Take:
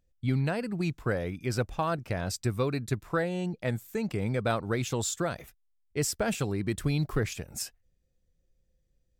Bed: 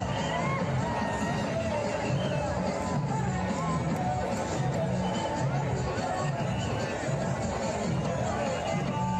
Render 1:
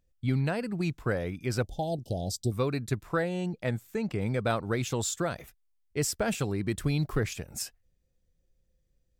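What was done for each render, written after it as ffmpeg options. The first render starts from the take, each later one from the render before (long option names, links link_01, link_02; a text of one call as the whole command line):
ffmpeg -i in.wav -filter_complex "[0:a]asettb=1/sr,asplit=3[link_01][link_02][link_03];[link_01]atrim=end=1.634[link_04];[link_02]atrim=start=1.63:end=2.52,asetpts=PTS-STARTPTS,afade=type=in:duration=0.004:curve=qsin,afade=type=out:start_time=0.886:duration=0.004:curve=qsin,asuperstop=centerf=1600:order=20:qfactor=0.72[link_05];[link_03]atrim=start=2.516[link_06];[link_04][link_05]acrossfade=duration=0.004:curve1=hsin:curve2=qsin[link_07];[link_07][link_06]acrossfade=duration=0.004:curve1=qsin:curve2=hsin,asettb=1/sr,asplit=3[link_08][link_09][link_10];[link_08]atrim=end=3.694[link_11];[link_09]atrim=start=3.69:end=4.21,asetpts=PTS-STARTPTS,afade=type=in:duration=0.004:curve=qsin,afade=type=out:start_time=0.516:duration=0.004:curve=qsin,highshelf=frequency=6900:gain=-8[link_12];[link_10]atrim=start=4.206[link_13];[link_11][link_12]acrossfade=duration=0.004:curve1=hsin:curve2=qsin[link_14];[link_14][link_13]acrossfade=duration=0.004:curve1=qsin:curve2=hsin" out.wav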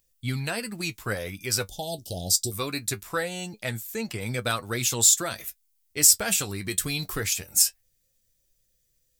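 ffmpeg -i in.wav -af "crystalizer=i=9.5:c=0,flanger=delay=8:depth=3.2:regen=46:speed=0.22:shape=triangular" out.wav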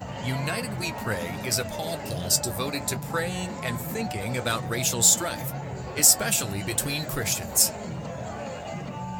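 ffmpeg -i in.wav -i bed.wav -filter_complex "[1:a]volume=-5dB[link_01];[0:a][link_01]amix=inputs=2:normalize=0" out.wav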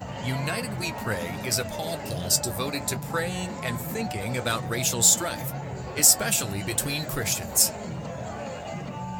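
ffmpeg -i in.wav -af anull out.wav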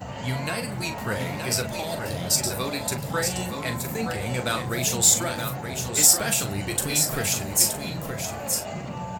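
ffmpeg -i in.wav -filter_complex "[0:a]asplit=2[link_01][link_02];[link_02]adelay=40,volume=-9dB[link_03];[link_01][link_03]amix=inputs=2:normalize=0,asplit=2[link_04][link_05];[link_05]aecho=0:1:923:0.473[link_06];[link_04][link_06]amix=inputs=2:normalize=0" out.wav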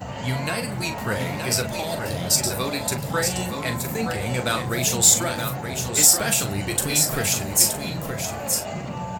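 ffmpeg -i in.wav -af "volume=2.5dB,alimiter=limit=-2dB:level=0:latency=1" out.wav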